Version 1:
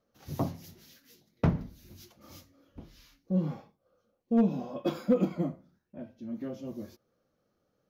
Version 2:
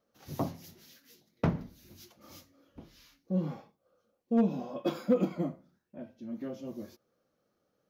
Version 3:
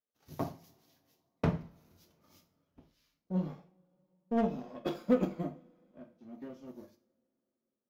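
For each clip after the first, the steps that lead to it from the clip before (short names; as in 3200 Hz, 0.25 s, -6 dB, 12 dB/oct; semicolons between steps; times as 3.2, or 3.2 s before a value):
low shelf 110 Hz -9.5 dB
power-law curve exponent 1.4; two-slope reverb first 0.41 s, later 3.3 s, from -28 dB, DRR 6 dB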